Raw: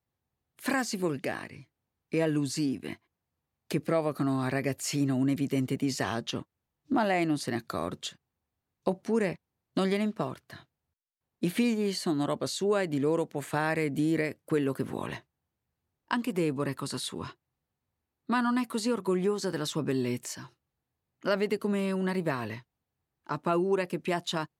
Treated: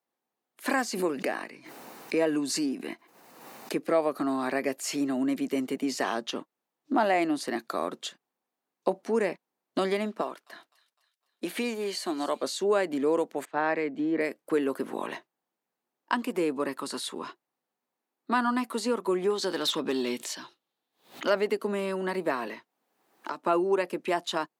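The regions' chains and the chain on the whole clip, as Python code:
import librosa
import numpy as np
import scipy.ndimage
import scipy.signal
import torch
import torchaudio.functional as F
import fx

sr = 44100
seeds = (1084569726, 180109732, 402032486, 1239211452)

y = fx.chain(x, sr, fx.notch(hz=3300.0, q=12.0),
    fx.pre_swell(db_per_s=38.0), at=(0.93, 3.72))
y = fx.chain(y, sr, fx.highpass(hz=370.0, slope=6),
    fx.echo_wet_highpass(ms=254, feedback_pct=50, hz=2900.0, wet_db=-13), at=(10.21, 12.43))
y = fx.chain(y, sr, fx.air_absorb(metres=170.0),
    fx.band_widen(depth_pct=100), at=(13.45, 14.21))
y = fx.chain(y, sr, fx.peak_eq(hz=3600.0, db=11.5, octaves=0.68),
    fx.overload_stage(gain_db=22.0),
    fx.pre_swell(db_per_s=150.0), at=(19.3, 21.3))
y = fx.chain(y, sr, fx.peak_eq(hz=120.0, db=-6.0, octaves=0.76),
    fx.band_squash(depth_pct=100), at=(22.47, 23.43))
y = scipy.signal.sosfilt(scipy.signal.butter(4, 230.0, 'highpass', fs=sr, output='sos'), y)
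y = fx.peak_eq(y, sr, hz=820.0, db=4.0, octaves=2.0)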